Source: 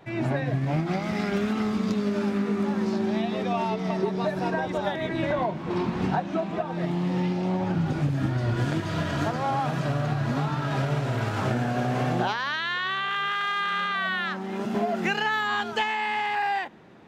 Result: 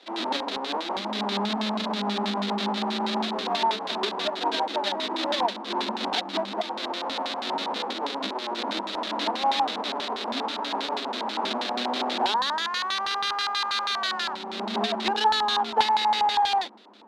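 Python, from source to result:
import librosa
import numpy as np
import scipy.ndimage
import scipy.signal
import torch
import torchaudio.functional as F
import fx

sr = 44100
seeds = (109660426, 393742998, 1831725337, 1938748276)

y = fx.halfwave_hold(x, sr)
y = scipy.signal.sosfilt(scipy.signal.cheby1(10, 1.0, 200.0, 'highpass', fs=sr, output='sos'), y)
y = fx.high_shelf(y, sr, hz=4600.0, db=9.5)
y = fx.hum_notches(y, sr, base_hz=60, count=6)
y = fx.filter_lfo_lowpass(y, sr, shape='square', hz=6.2, low_hz=920.0, high_hz=3800.0, q=5.4)
y = F.gain(torch.from_numpy(y), -7.5).numpy()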